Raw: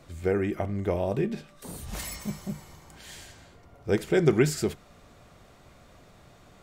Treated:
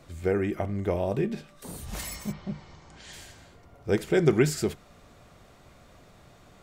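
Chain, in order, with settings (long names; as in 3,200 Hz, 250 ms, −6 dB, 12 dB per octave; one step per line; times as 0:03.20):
0:02.31–0:03.12: low-pass filter 3,700 Hz → 8,400 Hz 24 dB per octave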